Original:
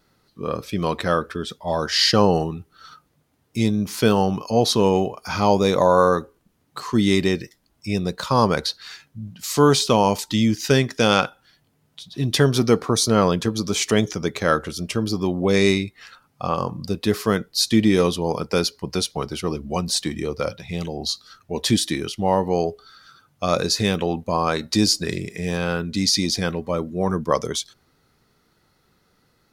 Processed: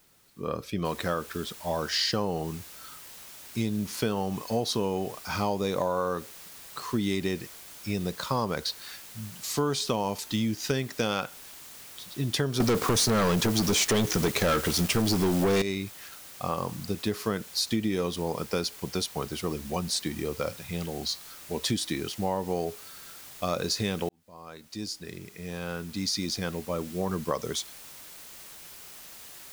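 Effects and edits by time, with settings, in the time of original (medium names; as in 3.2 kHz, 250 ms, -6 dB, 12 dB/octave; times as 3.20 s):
0.85 s: noise floor step -58 dB -41 dB
12.60–15.62 s: waveshaping leveller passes 5
24.09–27.17 s: fade in
whole clip: compression, threshold -18 dBFS; trim -5.5 dB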